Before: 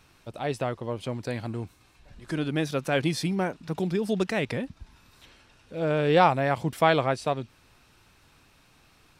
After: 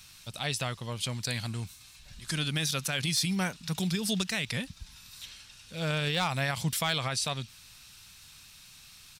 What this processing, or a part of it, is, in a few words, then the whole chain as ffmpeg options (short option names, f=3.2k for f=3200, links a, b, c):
clipper into limiter: -af "firequalizer=gain_entry='entry(180,0);entry(310,-12);entry(1200,-1);entry(3700,12);entry(6500,14)':delay=0.05:min_phase=1,asoftclip=type=hard:threshold=-12.5dB,alimiter=limit=-19.5dB:level=0:latency=1"